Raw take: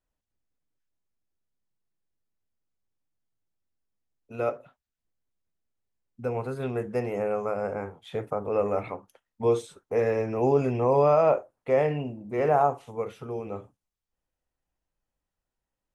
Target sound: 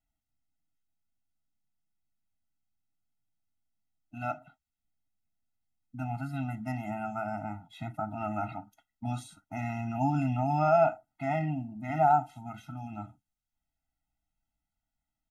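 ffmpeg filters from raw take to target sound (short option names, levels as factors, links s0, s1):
-af "asetrate=45938,aresample=44100,afftfilt=real='re*eq(mod(floor(b*sr/1024/310),2),0)':imag='im*eq(mod(floor(b*sr/1024/310),2),0)':win_size=1024:overlap=0.75"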